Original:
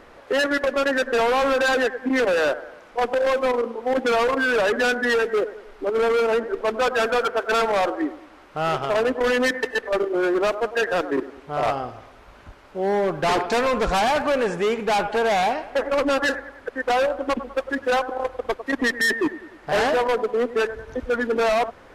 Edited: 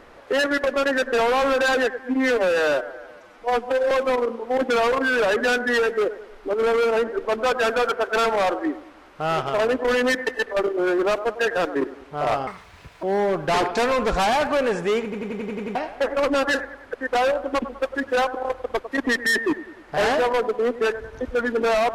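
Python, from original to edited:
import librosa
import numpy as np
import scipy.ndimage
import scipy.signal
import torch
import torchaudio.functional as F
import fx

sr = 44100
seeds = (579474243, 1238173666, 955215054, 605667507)

y = fx.edit(x, sr, fx.stretch_span(start_s=1.99, length_s=1.28, factor=1.5),
    fx.speed_span(start_s=11.83, length_s=0.95, speed=1.69),
    fx.stutter_over(start_s=14.78, slice_s=0.09, count=8), tone=tone)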